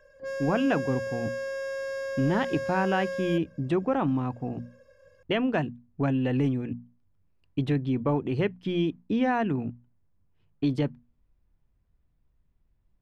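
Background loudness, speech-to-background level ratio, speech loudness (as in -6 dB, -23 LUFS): -33.5 LUFS, 5.0 dB, -28.5 LUFS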